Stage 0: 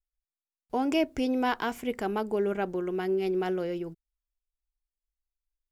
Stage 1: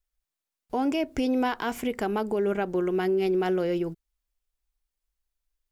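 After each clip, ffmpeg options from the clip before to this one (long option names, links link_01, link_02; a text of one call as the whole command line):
ffmpeg -i in.wav -af "alimiter=level_in=1dB:limit=-24dB:level=0:latency=1:release=162,volume=-1dB,volume=6.5dB" out.wav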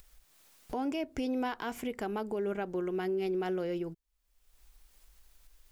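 ffmpeg -i in.wav -af "acompressor=mode=upward:threshold=-27dB:ratio=2.5,volume=-7.5dB" out.wav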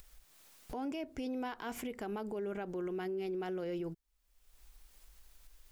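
ffmpeg -i in.wav -af "alimiter=level_in=9dB:limit=-24dB:level=0:latency=1:release=62,volume=-9dB,volume=1dB" out.wav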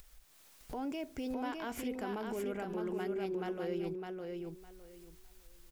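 ffmpeg -i in.wav -af "aecho=1:1:608|1216|1824:0.631|0.126|0.0252" out.wav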